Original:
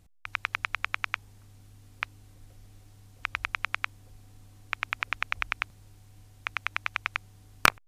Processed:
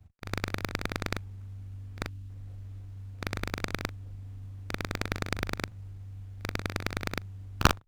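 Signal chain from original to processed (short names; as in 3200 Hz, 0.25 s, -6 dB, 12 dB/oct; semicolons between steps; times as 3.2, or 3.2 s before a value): short-time reversal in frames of 81 ms; spectral delete 2.09–2.29, 330–2500 Hz; in parallel at -8 dB: sample-rate reducer 7000 Hz, jitter 0%; on the sum: bell 100 Hz +10 dB 1.7 oct; running maximum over 9 samples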